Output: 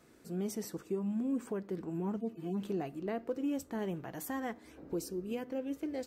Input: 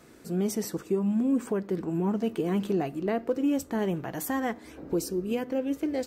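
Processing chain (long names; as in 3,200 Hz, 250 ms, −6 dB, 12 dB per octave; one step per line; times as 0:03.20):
0:02.17–0:02.62: harmonic-percussive split with one part muted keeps harmonic
level −8.5 dB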